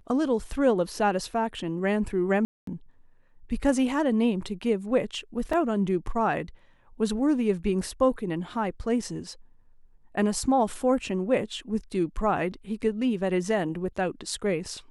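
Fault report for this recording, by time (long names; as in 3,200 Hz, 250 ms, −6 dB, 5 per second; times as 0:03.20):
0:02.45–0:02.67: drop-out 223 ms
0:05.53: drop-out 3.8 ms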